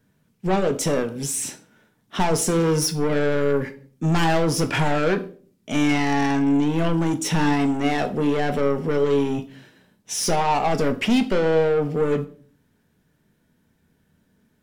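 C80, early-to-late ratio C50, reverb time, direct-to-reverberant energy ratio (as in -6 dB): 19.5 dB, 15.0 dB, 0.45 s, 6.5 dB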